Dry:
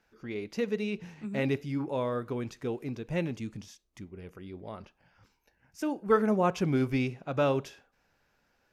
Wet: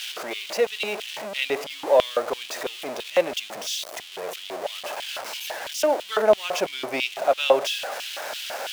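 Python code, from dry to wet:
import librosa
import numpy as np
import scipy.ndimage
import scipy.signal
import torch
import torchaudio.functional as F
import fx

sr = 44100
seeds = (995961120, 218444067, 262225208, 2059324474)

y = x + 0.5 * 10.0 ** (-35.5 / 20.0) * np.sign(x)
y = fx.filter_lfo_highpass(y, sr, shape='square', hz=3.0, low_hz=620.0, high_hz=3100.0, q=4.1)
y = y * 10.0 ** (7.0 / 20.0)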